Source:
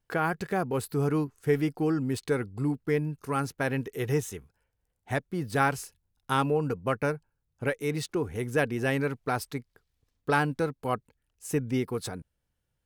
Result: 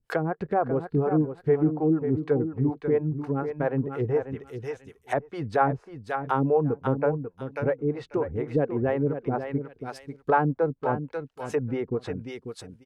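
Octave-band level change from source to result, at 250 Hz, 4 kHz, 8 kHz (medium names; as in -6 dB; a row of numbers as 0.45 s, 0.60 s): +3.5 dB, no reading, under -10 dB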